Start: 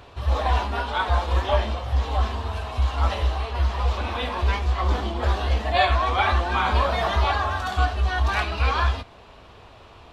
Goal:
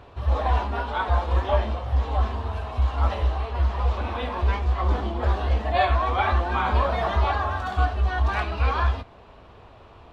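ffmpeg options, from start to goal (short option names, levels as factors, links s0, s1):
-af "highshelf=f=2600:g=-11"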